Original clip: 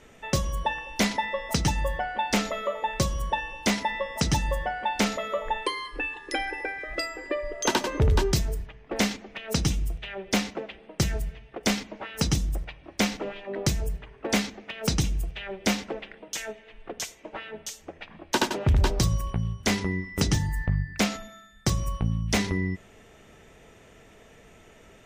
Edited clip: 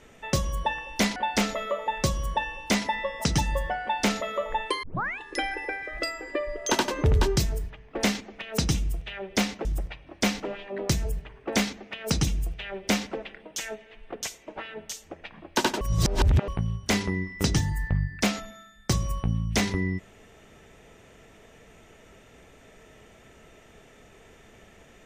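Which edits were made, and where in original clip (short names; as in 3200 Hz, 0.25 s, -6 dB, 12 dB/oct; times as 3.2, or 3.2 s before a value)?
1.16–2.12 cut
5.79 tape start 0.36 s
10.61–12.42 cut
18.58–19.25 reverse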